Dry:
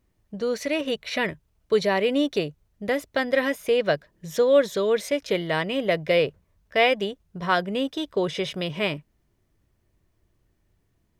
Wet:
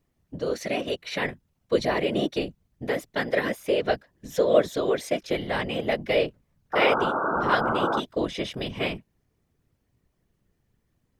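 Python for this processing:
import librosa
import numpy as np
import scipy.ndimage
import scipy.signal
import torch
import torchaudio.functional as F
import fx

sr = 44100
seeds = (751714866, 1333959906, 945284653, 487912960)

y = fx.spec_paint(x, sr, seeds[0], shape='noise', start_s=6.73, length_s=1.27, low_hz=240.0, high_hz=1500.0, level_db=-23.0)
y = fx.whisperise(y, sr, seeds[1])
y = F.gain(torch.from_numpy(y), -2.5).numpy()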